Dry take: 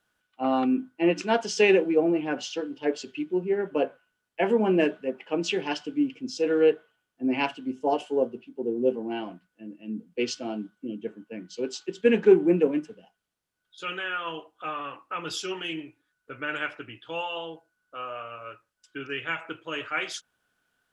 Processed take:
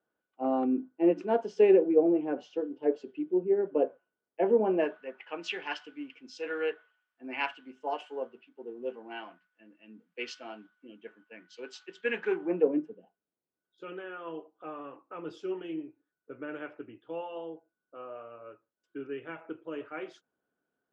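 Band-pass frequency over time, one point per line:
band-pass, Q 1.2
4.54 s 430 Hz
5.11 s 1600 Hz
12.34 s 1600 Hz
12.8 s 360 Hz

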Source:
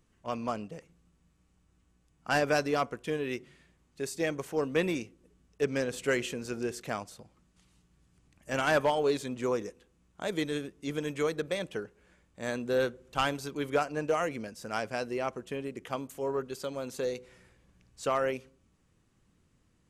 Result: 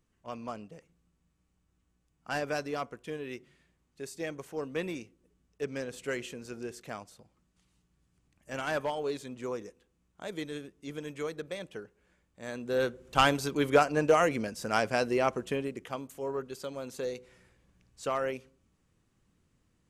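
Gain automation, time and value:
12.48 s -6 dB
13.18 s +5.5 dB
15.49 s +5.5 dB
15.94 s -2.5 dB

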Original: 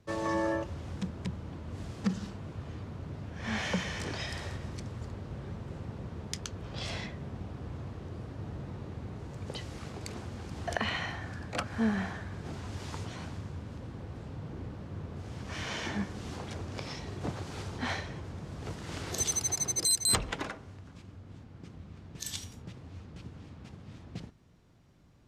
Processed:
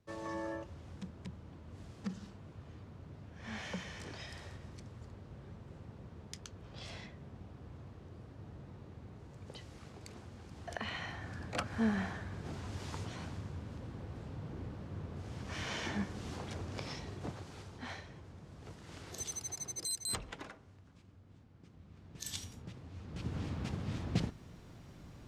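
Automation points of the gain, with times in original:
10.68 s -10 dB
11.44 s -3 dB
16.93 s -3 dB
17.68 s -11 dB
21.7 s -11 dB
22.38 s -3 dB
22.96 s -3 dB
23.37 s +9 dB

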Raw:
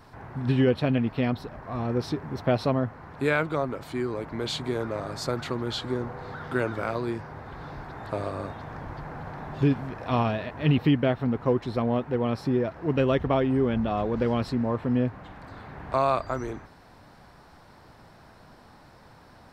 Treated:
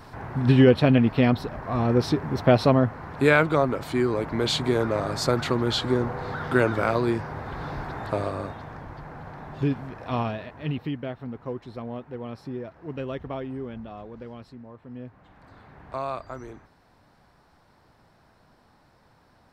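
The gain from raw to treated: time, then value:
7.89 s +6 dB
8.88 s -2.5 dB
10.23 s -2.5 dB
10.9 s -9.5 dB
13.43 s -9.5 dB
14.76 s -18.5 dB
15.48 s -7.5 dB

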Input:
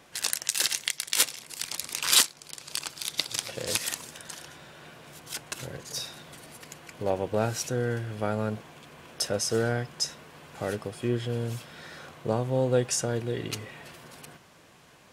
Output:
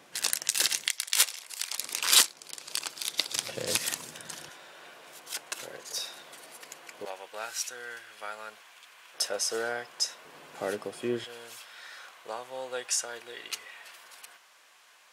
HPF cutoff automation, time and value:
170 Hz
from 0.87 s 710 Hz
from 1.79 s 290 Hz
from 3.36 s 120 Hz
from 4.49 s 450 Hz
from 7.05 s 1300 Hz
from 9.14 s 600 Hz
from 10.25 s 280 Hz
from 11.24 s 1000 Hz

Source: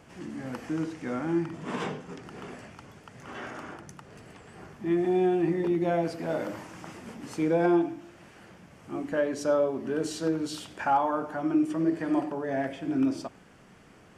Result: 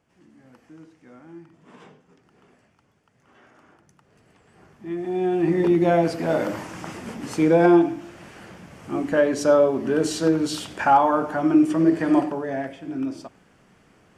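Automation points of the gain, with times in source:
3.47 s -15.5 dB
5.04 s -3 dB
5.6 s +8 dB
12.18 s +8 dB
12.78 s -2 dB

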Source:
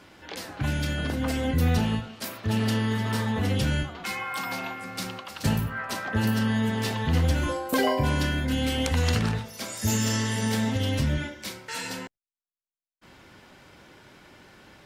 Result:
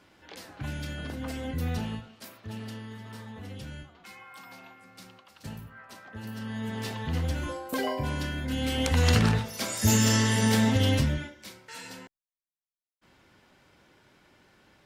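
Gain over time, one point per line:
1.85 s -8 dB
2.88 s -16 dB
6.21 s -16 dB
6.77 s -6.5 dB
8.35 s -6.5 dB
9.17 s +3 dB
10.93 s +3 dB
11.34 s -9 dB

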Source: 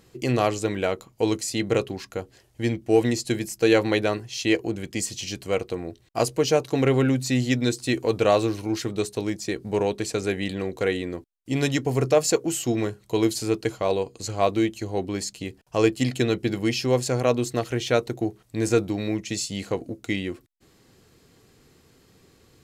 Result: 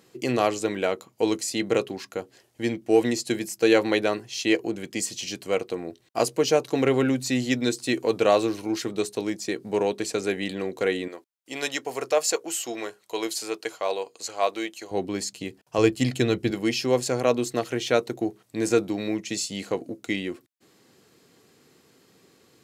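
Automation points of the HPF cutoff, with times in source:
190 Hz
from 11.08 s 570 Hz
from 14.91 s 150 Hz
from 15.78 s 61 Hz
from 16.51 s 180 Hz

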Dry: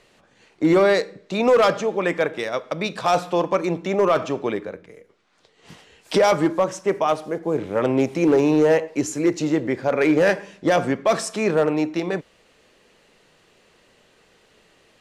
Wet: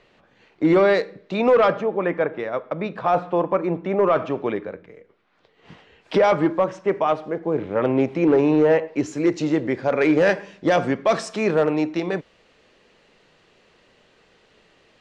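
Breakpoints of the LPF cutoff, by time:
1.4 s 3600 Hz
1.91 s 1700 Hz
3.72 s 1700 Hz
4.48 s 2900 Hz
8.85 s 2900 Hz
9.28 s 5400 Hz

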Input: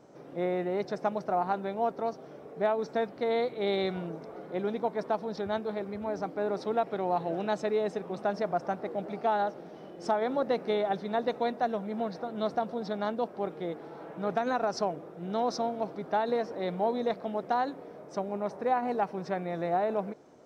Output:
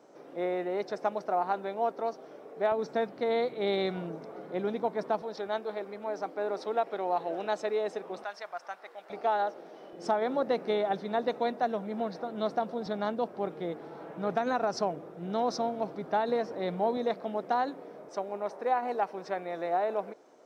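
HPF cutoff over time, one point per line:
290 Hz
from 2.72 s 130 Hz
from 5.22 s 360 Hz
from 8.24 s 1200 Hz
from 9.1 s 360 Hz
from 9.93 s 160 Hz
from 12.86 s 60 Hz
from 16.97 s 180 Hz
from 18.09 s 360 Hz

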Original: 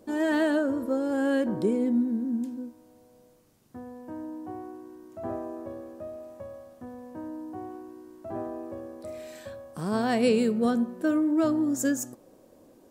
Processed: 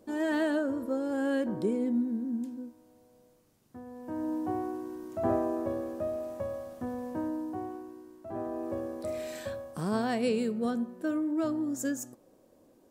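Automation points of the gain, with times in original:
3.84 s -4 dB
4.32 s +6 dB
7.09 s +6 dB
8.25 s -4.5 dB
8.73 s +4 dB
9.52 s +4 dB
10.2 s -6 dB

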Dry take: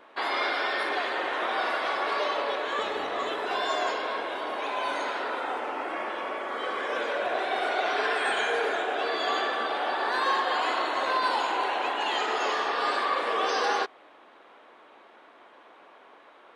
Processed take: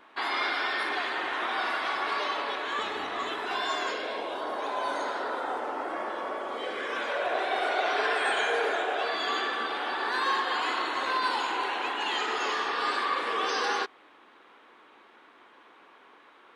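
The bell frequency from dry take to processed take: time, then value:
bell -9 dB 0.7 oct
3.75 s 540 Hz
4.46 s 2500 Hz
6.38 s 2500 Hz
6.84 s 840 Hz
7.33 s 170 Hz
8.87 s 170 Hz
9.27 s 630 Hz

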